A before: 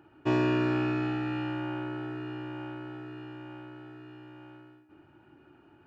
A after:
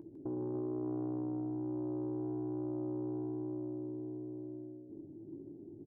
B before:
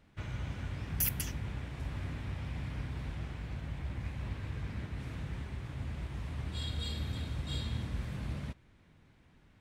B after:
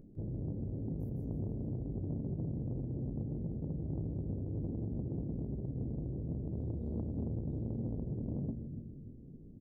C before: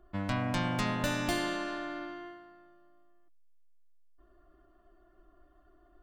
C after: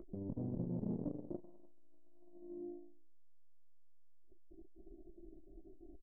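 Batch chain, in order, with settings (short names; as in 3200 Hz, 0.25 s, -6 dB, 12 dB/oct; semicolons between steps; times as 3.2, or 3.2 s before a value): inverse Chebyshev low-pass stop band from 1100 Hz, stop band 50 dB; bell 64 Hz -12 dB 1.3 oct; notches 60/120 Hz; compressor 6:1, threshold -39 dBFS; limiter -38.5 dBFS; upward compressor, threshold -58 dBFS; doubler 18 ms -9 dB; split-band echo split 330 Hz, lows 0.288 s, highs 0.153 s, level -6.5 dB; core saturation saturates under 240 Hz; gain +9.5 dB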